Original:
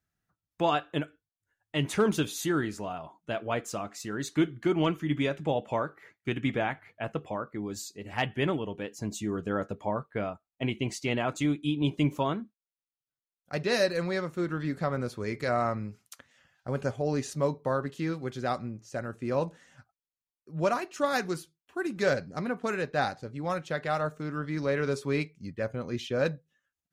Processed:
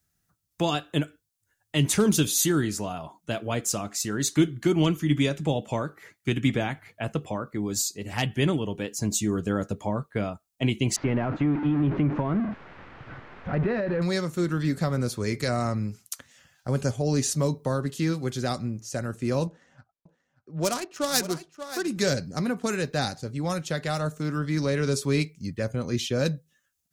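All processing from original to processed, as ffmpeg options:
-filter_complex "[0:a]asettb=1/sr,asplit=3[a][b][c];[a]atrim=end=10.964[d];[b]atrim=start=10.96:end=14.02,asetpts=PTS-STARTPTS,afade=t=in:d=0.004:c=qsin,afade=t=out:st=3.056:d=0.004:c=qsin,aeval=exprs='val(0)+0.5*0.0316*sgn(val(0))':c=same,lowpass=f=1.9k:w=0.5412,lowpass=f=1.9k:w=1.3066,acompressor=threshold=-25dB:ratio=6:attack=3.2:release=140:knee=1:detection=peak[e];[c]atrim=start=14.016[f];[d][e]acrossfade=d=0.004:c1=hsin:c2=qsin[g];[g][f]acrossfade=d=0.004:c1=qsin:c2=hsin,asettb=1/sr,asplit=3[h][i][j];[h]atrim=end=19.474[k];[i]atrim=start=19.47:end=21.88,asetpts=PTS-STARTPTS,afade=t=in:d=0.004:c=qsin,afade=t=out:st=2.406:d=0.004:c=qsin,adynamicsmooth=sensitivity=7:basefreq=1.4k,bass=f=250:g=-6,treble=f=4k:g=7,aecho=1:1:582:0.188,atrim=end_sample=106281[l];[j]atrim=start=21.876[m];[k][l]acrossfade=d=0.004:c1=hsin:c2=qsin[n];[n][m]acrossfade=d=0.004:c1=qsin:c2=hsin,bass=f=250:g=4,treble=f=4k:g=11,acrossover=split=390|3000[o][p][q];[p]acompressor=threshold=-37dB:ratio=2[r];[o][r][q]amix=inputs=3:normalize=0,volume=4dB"

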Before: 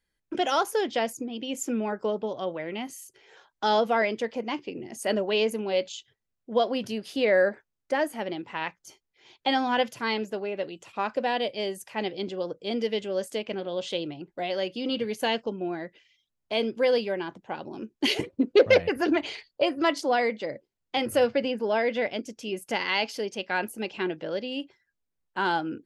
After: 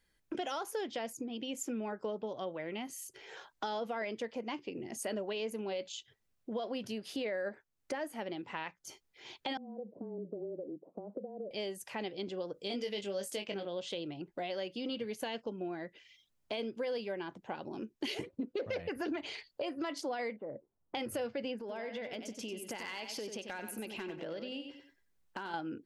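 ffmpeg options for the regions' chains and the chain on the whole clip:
-filter_complex "[0:a]asettb=1/sr,asplit=3[a][b][c];[a]atrim=end=9.574[d];[b]atrim=start=9.57:end=11.51,asetpts=PTS-STARTPTS,afade=t=in:d=0.004:c=qsin,afade=t=out:st=1.936:d=0.004:c=qsin,acompressor=threshold=-32dB:ratio=10:attack=3.2:release=140:knee=1:detection=peak,asuperpass=centerf=360:order=8:qfactor=0.83,afreqshift=-21[e];[c]atrim=start=11.506[f];[d][e]acrossfade=d=0.004:c1=hsin:c2=qsin[g];[g][f]acrossfade=d=0.004:c1=qsin:c2=hsin,asettb=1/sr,asplit=3[h][i][j];[h]atrim=end=12.544[k];[i]atrim=start=12.54:end=13.65,asetpts=PTS-STARTPTS,afade=t=in:d=0.004:c=qsin,afade=t=out:st=1.106:d=0.004:c=qsin,highshelf=f=3.2k:g=8.5,asplit=2[l][m];[m]adelay=20,volume=-6dB[n];[l][n]amix=inputs=2:normalize=0,atrim=end_sample=48951[o];[j]atrim=start=13.646[p];[k][o]acrossfade=d=0.004:c1=hsin:c2=qsin[q];[q][p]acrossfade=d=0.004:c1=qsin:c2=hsin,asettb=1/sr,asplit=3[r][s][t];[r]atrim=end=20.364[u];[s]atrim=start=20.36:end=20.95,asetpts=PTS-STARTPTS,afade=t=in:d=0.004:c=qsin,afade=t=out:st=0.586:d=0.004:c=qsin,lowpass=f=1.2k:w=0.5412,lowpass=f=1.2k:w=1.3066,acompressor=threshold=-37dB:ratio=2:attack=3.2:release=140:knee=1:detection=peak[v];[t]atrim=start=20.946[w];[u][v]acrossfade=d=0.004:c1=hsin:c2=qsin[x];[x][w]acrossfade=d=0.004:c1=qsin:c2=hsin,asettb=1/sr,asplit=3[y][z][aa];[y]atrim=end=21.594[ab];[z]atrim=start=21.59:end=25.54,asetpts=PTS-STARTPTS,afade=t=in:d=0.004:c=qsin,afade=t=out:st=3.946:d=0.004:c=qsin,acompressor=threshold=-34dB:ratio=6:attack=3.2:release=140:knee=1:detection=peak,aeval=exprs='clip(val(0),-1,0.0398)':c=same,aecho=1:1:93|186|279:0.398|0.111|0.0312,atrim=end_sample=174195[ac];[aa]atrim=start=25.536[ad];[ab][ac]acrossfade=d=0.004:c1=hsin:c2=qsin[ae];[ae][ad]acrossfade=d=0.004:c1=qsin:c2=hsin,alimiter=limit=-18dB:level=0:latency=1:release=20,acompressor=threshold=-47dB:ratio=2.5,volume=4.5dB"

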